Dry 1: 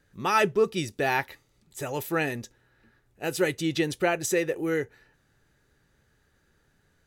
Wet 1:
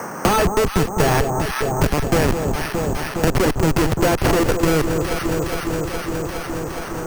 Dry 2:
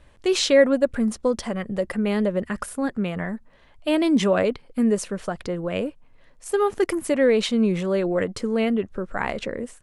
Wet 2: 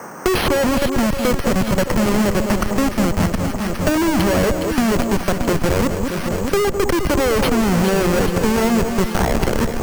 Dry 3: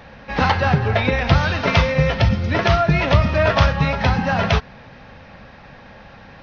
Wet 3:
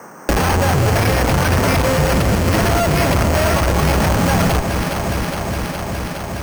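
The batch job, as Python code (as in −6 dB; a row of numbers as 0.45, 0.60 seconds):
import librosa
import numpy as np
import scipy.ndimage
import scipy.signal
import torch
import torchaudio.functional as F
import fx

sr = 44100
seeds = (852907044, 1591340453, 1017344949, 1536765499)

p1 = fx.schmitt(x, sr, flips_db=-25.0)
p2 = fx.dmg_noise_band(p1, sr, seeds[0], low_hz=130.0, high_hz=1500.0, level_db=-62.0)
p3 = p2 + fx.echo_alternate(p2, sr, ms=207, hz=1100.0, feedback_pct=80, wet_db=-7.0, dry=0)
p4 = np.repeat(scipy.signal.resample_poly(p3, 1, 6), 6)[:len(p3)]
p5 = fx.band_squash(p4, sr, depth_pct=70)
y = p5 * 10.0 ** (-2 / 20.0) / np.max(np.abs(p5))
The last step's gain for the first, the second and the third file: +14.0, +6.5, +2.5 decibels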